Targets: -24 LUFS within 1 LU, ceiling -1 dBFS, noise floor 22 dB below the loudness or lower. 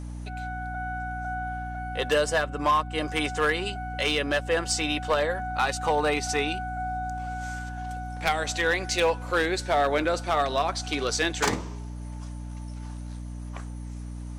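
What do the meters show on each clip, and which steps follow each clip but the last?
clipped samples 0.6%; clipping level -16.5 dBFS; hum 60 Hz; highest harmonic 300 Hz; hum level -34 dBFS; loudness -27.0 LUFS; peak level -16.5 dBFS; loudness target -24.0 LUFS
-> clip repair -16.5 dBFS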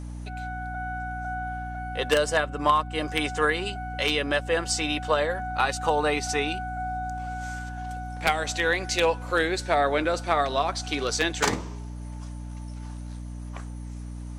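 clipped samples 0.0%; hum 60 Hz; highest harmonic 300 Hz; hum level -34 dBFS
-> de-hum 60 Hz, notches 5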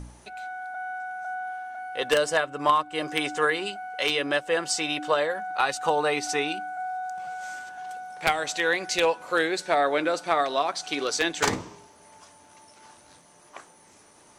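hum not found; loudness -26.5 LUFS; peak level -7.5 dBFS; loudness target -24.0 LUFS
-> trim +2.5 dB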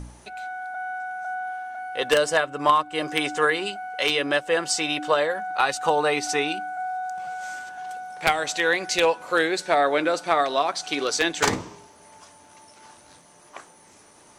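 loudness -24.0 LUFS; peak level -5.0 dBFS; noise floor -53 dBFS

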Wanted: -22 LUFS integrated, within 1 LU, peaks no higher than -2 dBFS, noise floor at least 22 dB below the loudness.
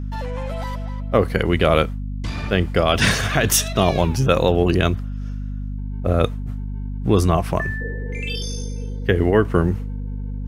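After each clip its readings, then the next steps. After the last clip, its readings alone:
hum 50 Hz; highest harmonic 250 Hz; hum level -25 dBFS; loudness -21.0 LUFS; peak level -2.5 dBFS; loudness target -22.0 LUFS
-> hum notches 50/100/150/200/250 Hz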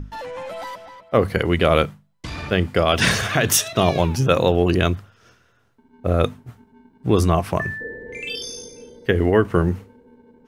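hum not found; loudness -20.0 LUFS; peak level -3.0 dBFS; loudness target -22.0 LUFS
-> trim -2 dB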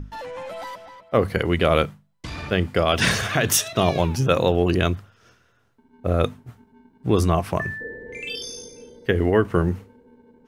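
loudness -22.0 LUFS; peak level -5.0 dBFS; noise floor -62 dBFS

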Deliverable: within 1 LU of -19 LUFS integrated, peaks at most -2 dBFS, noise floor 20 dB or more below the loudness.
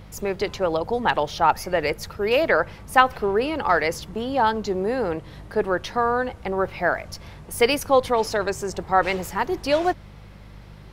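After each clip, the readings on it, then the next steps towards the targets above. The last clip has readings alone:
hum 50 Hz; highest harmonic 200 Hz; hum level -43 dBFS; loudness -23.0 LUFS; peak level -2.5 dBFS; loudness target -19.0 LUFS
-> de-hum 50 Hz, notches 4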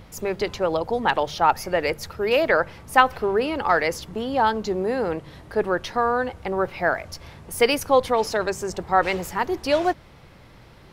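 hum not found; loudness -23.0 LUFS; peak level -2.5 dBFS; loudness target -19.0 LUFS
-> trim +4 dB; peak limiter -2 dBFS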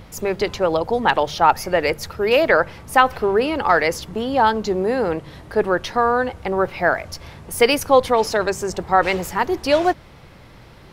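loudness -19.5 LUFS; peak level -2.0 dBFS; noise floor -44 dBFS

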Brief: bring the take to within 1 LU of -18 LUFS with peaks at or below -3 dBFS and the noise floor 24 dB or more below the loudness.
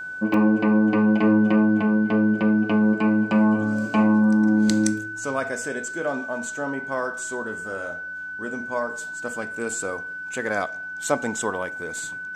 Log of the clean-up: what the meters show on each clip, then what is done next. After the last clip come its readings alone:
dropouts 1; longest dropout 2.7 ms; steady tone 1.5 kHz; tone level -31 dBFS; loudness -23.0 LUFS; peak level -5.5 dBFS; loudness target -18.0 LUFS
-> interpolate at 0.34 s, 2.7 ms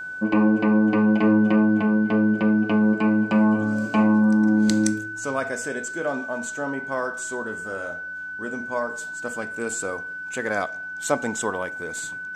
dropouts 0; steady tone 1.5 kHz; tone level -31 dBFS
-> band-stop 1.5 kHz, Q 30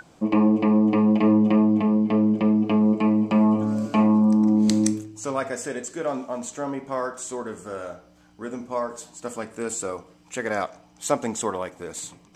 steady tone not found; loudness -22.5 LUFS; peak level -5.5 dBFS; loudness target -18.0 LUFS
-> trim +4.5 dB; peak limiter -3 dBFS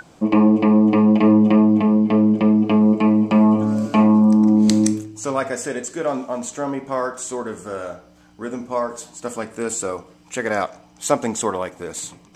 loudness -18.0 LUFS; peak level -3.0 dBFS; noise floor -50 dBFS

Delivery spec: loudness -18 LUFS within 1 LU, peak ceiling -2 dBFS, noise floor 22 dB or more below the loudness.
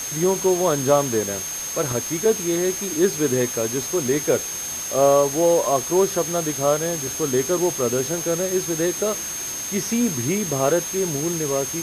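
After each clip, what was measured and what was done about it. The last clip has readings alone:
steady tone 6.4 kHz; tone level -28 dBFS; noise floor -29 dBFS; noise floor target -43 dBFS; loudness -21.0 LUFS; peak level -4.0 dBFS; loudness target -18.0 LUFS
-> band-stop 6.4 kHz, Q 30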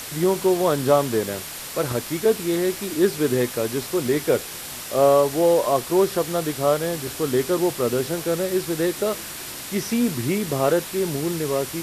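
steady tone not found; noise floor -35 dBFS; noise floor target -45 dBFS
-> noise reduction 10 dB, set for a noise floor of -35 dBFS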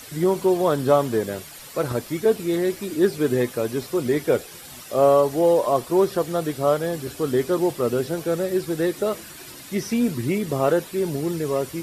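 noise floor -41 dBFS; noise floor target -45 dBFS
-> noise reduction 6 dB, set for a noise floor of -41 dBFS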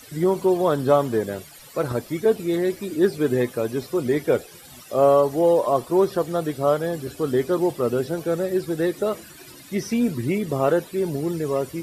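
noise floor -45 dBFS; loudness -22.5 LUFS; peak level -4.5 dBFS; loudness target -18.0 LUFS
-> trim +4.5 dB; peak limiter -2 dBFS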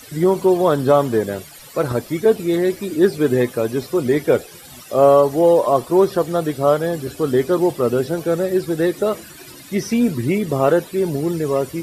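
loudness -18.0 LUFS; peak level -2.0 dBFS; noise floor -41 dBFS

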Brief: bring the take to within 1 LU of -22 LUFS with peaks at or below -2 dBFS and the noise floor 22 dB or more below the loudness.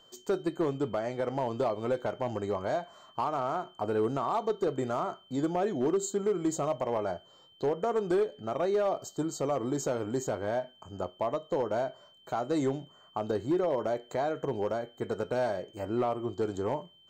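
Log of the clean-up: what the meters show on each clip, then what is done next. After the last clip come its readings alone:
clipped samples 1.2%; clipping level -22.0 dBFS; steady tone 3.1 kHz; tone level -58 dBFS; loudness -32.0 LUFS; peak level -22.0 dBFS; loudness target -22.0 LUFS
-> clip repair -22 dBFS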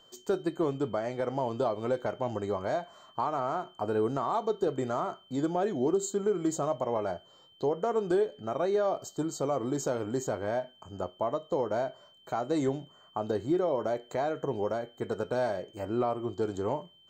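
clipped samples 0.0%; steady tone 3.1 kHz; tone level -58 dBFS
-> band-stop 3.1 kHz, Q 30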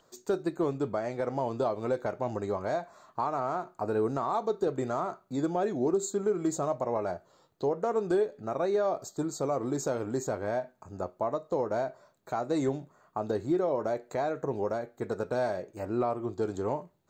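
steady tone not found; loudness -31.5 LUFS; peak level -17.0 dBFS; loudness target -22.0 LUFS
-> trim +9.5 dB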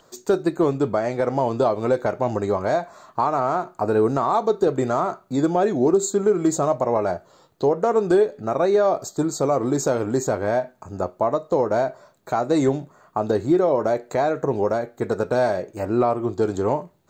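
loudness -22.0 LUFS; peak level -7.5 dBFS; noise floor -57 dBFS

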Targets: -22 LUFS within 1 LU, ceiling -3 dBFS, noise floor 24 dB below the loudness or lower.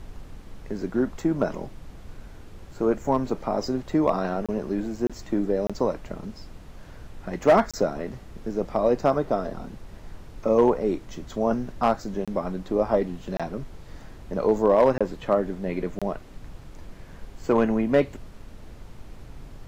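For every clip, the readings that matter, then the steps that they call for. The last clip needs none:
dropouts 8; longest dropout 26 ms; noise floor -45 dBFS; noise floor target -50 dBFS; loudness -25.5 LUFS; peak level -10.0 dBFS; loudness target -22.0 LUFS
-> interpolate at 4.46/5.07/5.67/7.71/12.25/13.37/14.98/15.99 s, 26 ms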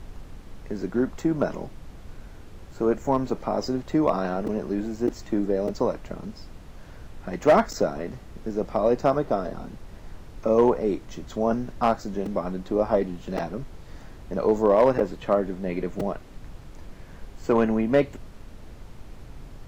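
dropouts 0; noise floor -45 dBFS; noise floor target -50 dBFS
-> noise print and reduce 6 dB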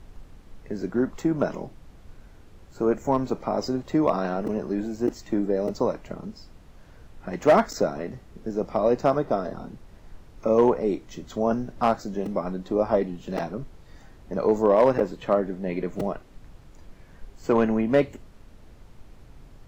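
noise floor -50 dBFS; loudness -25.5 LUFS; peak level -10.0 dBFS; loudness target -22.0 LUFS
-> trim +3.5 dB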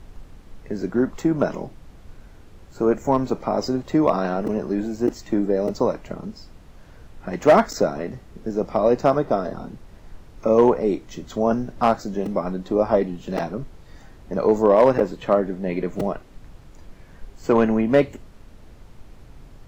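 loudness -22.0 LUFS; peak level -6.5 dBFS; noise floor -47 dBFS

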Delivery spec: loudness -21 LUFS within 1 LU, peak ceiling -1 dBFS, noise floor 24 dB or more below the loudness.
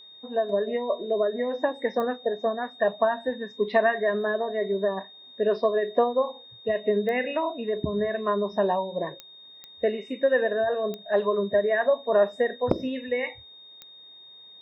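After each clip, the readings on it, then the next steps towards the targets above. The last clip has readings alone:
clicks found 6; steady tone 3.7 kHz; tone level -46 dBFS; loudness -26.5 LUFS; peak level -9.0 dBFS; loudness target -21.0 LUFS
-> de-click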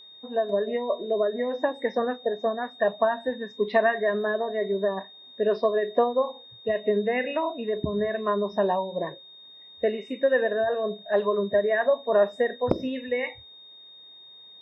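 clicks found 0; steady tone 3.7 kHz; tone level -46 dBFS
-> band-stop 3.7 kHz, Q 30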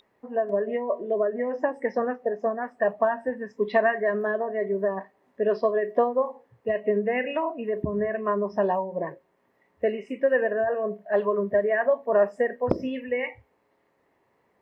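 steady tone not found; loudness -26.5 LUFS; peak level -9.0 dBFS; loudness target -21.0 LUFS
-> trim +5.5 dB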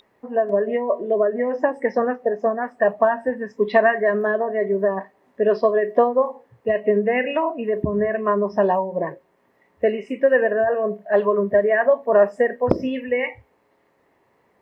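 loudness -21.0 LUFS; peak level -3.5 dBFS; noise floor -63 dBFS

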